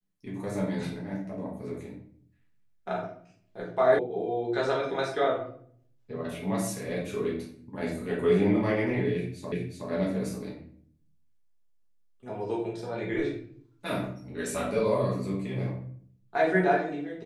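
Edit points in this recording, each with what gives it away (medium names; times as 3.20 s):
3.99 s: sound stops dead
9.52 s: repeat of the last 0.37 s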